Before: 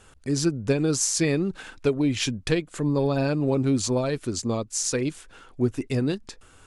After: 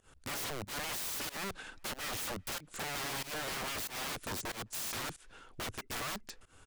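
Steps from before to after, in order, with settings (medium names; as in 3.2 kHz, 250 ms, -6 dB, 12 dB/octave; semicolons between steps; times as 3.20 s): integer overflow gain 27.5 dB; speakerphone echo 390 ms, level -29 dB; volume shaper 93 bpm, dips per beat 1, -22 dB, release 136 ms; trim -6 dB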